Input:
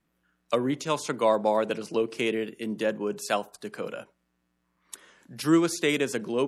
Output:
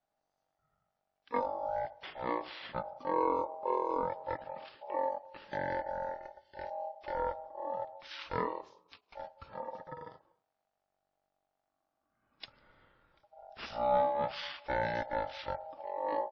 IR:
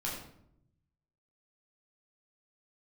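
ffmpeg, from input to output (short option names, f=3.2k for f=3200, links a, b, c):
-af "aeval=exprs='val(0)*sin(2*PI*1800*n/s)':c=same,asetrate=17508,aresample=44100,volume=-6.5dB"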